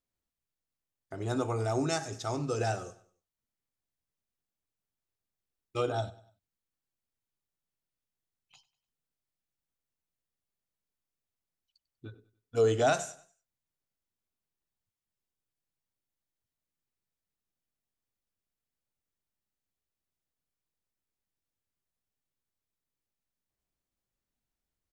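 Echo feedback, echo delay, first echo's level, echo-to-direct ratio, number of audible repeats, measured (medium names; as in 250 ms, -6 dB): 41%, 97 ms, -19.5 dB, -18.5 dB, 3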